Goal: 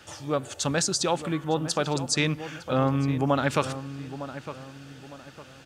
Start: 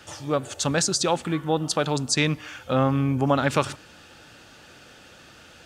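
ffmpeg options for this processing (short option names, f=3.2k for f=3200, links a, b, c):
-filter_complex "[0:a]asplit=2[a][b];[b]adelay=907,lowpass=f=2k:p=1,volume=-12dB,asplit=2[c][d];[d]adelay=907,lowpass=f=2k:p=1,volume=0.37,asplit=2[e][f];[f]adelay=907,lowpass=f=2k:p=1,volume=0.37,asplit=2[g][h];[h]adelay=907,lowpass=f=2k:p=1,volume=0.37[i];[a][c][e][g][i]amix=inputs=5:normalize=0,volume=-2.5dB"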